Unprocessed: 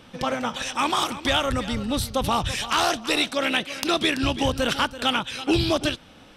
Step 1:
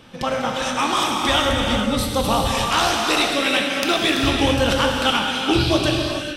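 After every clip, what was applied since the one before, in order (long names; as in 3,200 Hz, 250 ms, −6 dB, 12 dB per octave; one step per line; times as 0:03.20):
reverb whose tail is shaped and stops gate 480 ms flat, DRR −0.5 dB
level +1.5 dB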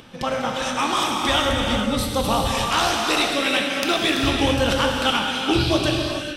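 upward compression, threshold −41 dBFS
level −1.5 dB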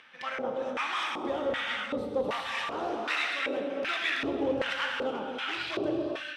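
hard clipping −17.5 dBFS, distortion −13 dB
auto-filter band-pass square 1.3 Hz 440–1,900 Hz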